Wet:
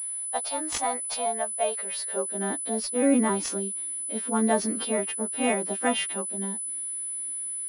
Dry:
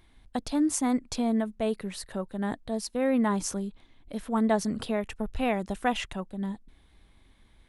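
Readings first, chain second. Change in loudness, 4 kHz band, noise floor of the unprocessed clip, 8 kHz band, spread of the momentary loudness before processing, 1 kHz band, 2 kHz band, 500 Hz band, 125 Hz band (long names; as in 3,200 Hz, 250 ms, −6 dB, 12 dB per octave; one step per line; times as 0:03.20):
+3.0 dB, +4.5 dB, −60 dBFS, +12.5 dB, 11 LU, +2.5 dB, +3.0 dB, +2.5 dB, can't be measured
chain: every partial snapped to a pitch grid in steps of 2 semitones
high-pass filter sweep 680 Hz → 290 Hz, 0:01.78–0:02.42
switching amplifier with a slow clock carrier 10,000 Hz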